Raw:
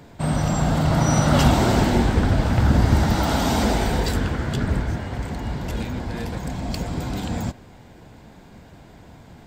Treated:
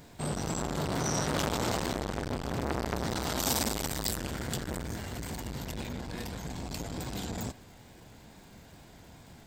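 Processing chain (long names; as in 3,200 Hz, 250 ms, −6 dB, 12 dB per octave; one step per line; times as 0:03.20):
surface crackle 280 per second −51 dBFS
0:03.39–0:05.65: high-shelf EQ 6,800 Hz +11.5 dB
pitch vibrato 2.3 Hz 49 cents
high-shelf EQ 3,000 Hz +10 dB
saturating transformer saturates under 1,500 Hz
level −7.5 dB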